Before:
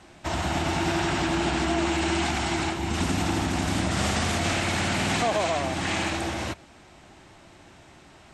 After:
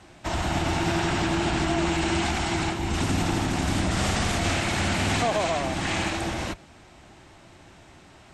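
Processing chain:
sub-octave generator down 1 octave, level −4 dB

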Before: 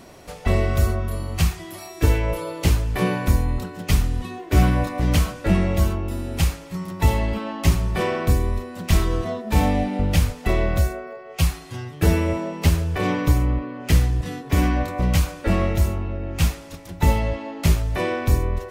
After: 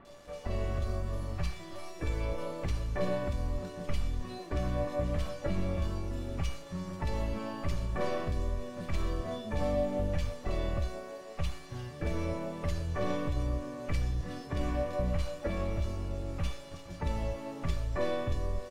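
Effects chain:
stylus tracing distortion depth 0.18 ms
high-shelf EQ 5,600 Hz −4 dB
in parallel at +1 dB: downward compressor 16 to 1, threshold −25 dBFS, peak gain reduction 16 dB
on the sum: brickwall limiter −10 dBFS, peak gain reduction 7.5 dB
automatic gain control gain up to 3.5 dB
pitch-shifted copies added −12 semitones −11 dB, +7 semitones −16 dB
bit reduction 6 bits
high-frequency loss of the air 55 metres
tuned comb filter 580 Hz, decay 0.32 s, mix 90%
multiband delay without the direct sound lows, highs 50 ms, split 2,300 Hz

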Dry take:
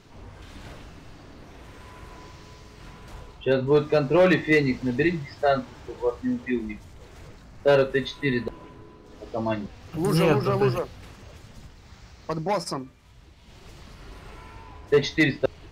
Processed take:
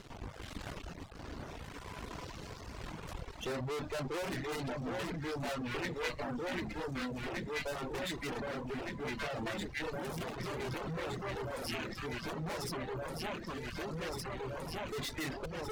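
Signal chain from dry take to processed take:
half-wave rectification
delay that swaps between a low-pass and a high-pass 759 ms, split 1,500 Hz, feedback 81%, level −5 dB
in parallel at +0.5 dB: downward compressor, threshold −38 dBFS, peak gain reduction 21.5 dB
on the sum: asymmetric clip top −27 dBFS
reverb reduction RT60 0.77 s
level −1.5 dB

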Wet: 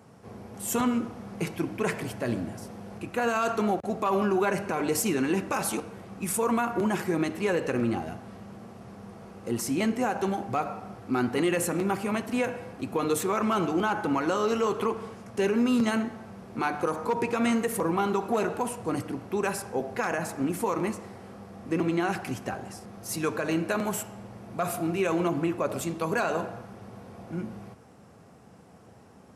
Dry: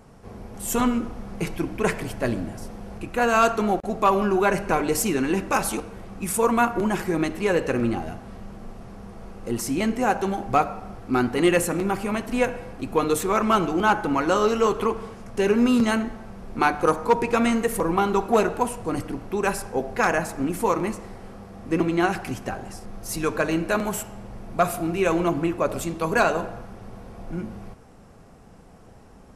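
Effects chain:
high-pass filter 85 Hz 24 dB per octave
brickwall limiter −14.5 dBFS, peak gain reduction 8 dB
level −2.5 dB

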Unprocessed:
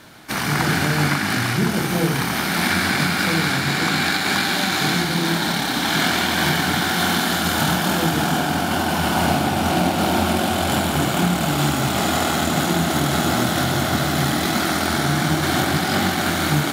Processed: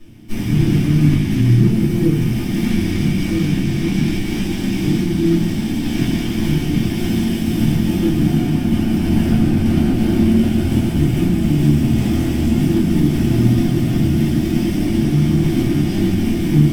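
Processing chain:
lower of the sound and its delayed copy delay 0.36 ms
low shelf with overshoot 370 Hz +13.5 dB, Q 1.5
rectangular room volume 120 cubic metres, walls furnished, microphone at 2.7 metres
level −14 dB

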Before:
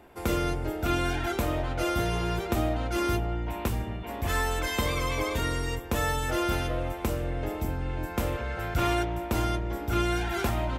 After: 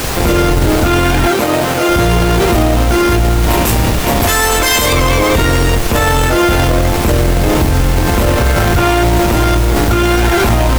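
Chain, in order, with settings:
0:03.42–0:04.93: bass and treble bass −6 dB, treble +9 dB
in parallel at −3.5 dB: comparator with hysteresis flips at −32.5 dBFS
on the sum: background noise pink −38 dBFS
0:01.31–0:01.89: high-pass filter 190 Hz 12 dB per octave
boost into a limiter +23.5 dB
level −3 dB

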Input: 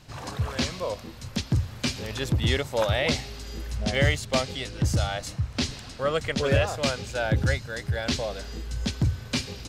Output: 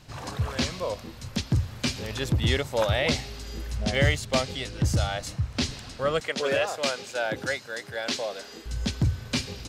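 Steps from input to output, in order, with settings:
0:06.20–0:08.66: high-pass filter 320 Hz 12 dB per octave

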